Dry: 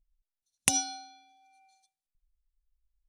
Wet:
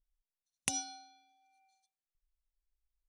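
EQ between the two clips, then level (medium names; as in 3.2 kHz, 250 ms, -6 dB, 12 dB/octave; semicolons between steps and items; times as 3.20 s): low-pass 11 kHz; -8.5 dB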